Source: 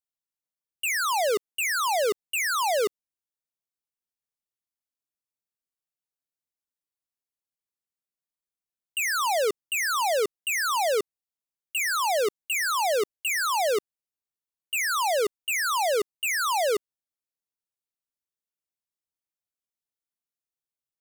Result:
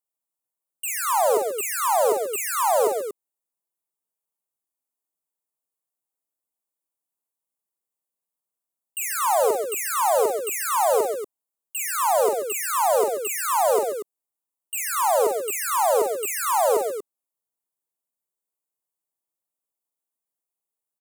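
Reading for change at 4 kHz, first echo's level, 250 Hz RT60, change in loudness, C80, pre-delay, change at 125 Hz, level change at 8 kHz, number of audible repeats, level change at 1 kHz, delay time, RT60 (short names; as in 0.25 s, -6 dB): -6.5 dB, -5.5 dB, none, +3.0 dB, none, none, n/a, +4.0 dB, 3, +5.0 dB, 44 ms, none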